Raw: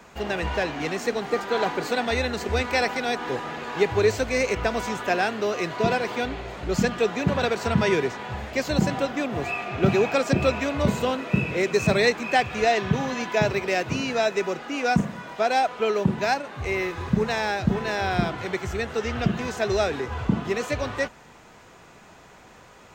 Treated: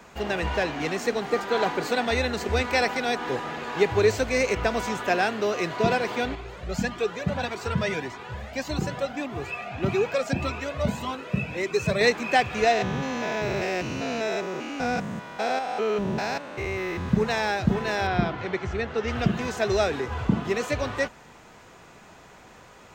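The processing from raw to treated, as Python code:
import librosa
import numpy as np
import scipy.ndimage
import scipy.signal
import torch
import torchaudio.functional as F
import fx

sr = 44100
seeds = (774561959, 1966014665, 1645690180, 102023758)

y = fx.comb_cascade(x, sr, direction='rising', hz=1.7, at=(6.35, 12.01))
y = fx.spec_steps(y, sr, hold_ms=200, at=(12.72, 17.08), fade=0.02)
y = fx.air_absorb(y, sr, metres=130.0, at=(18.07, 19.08))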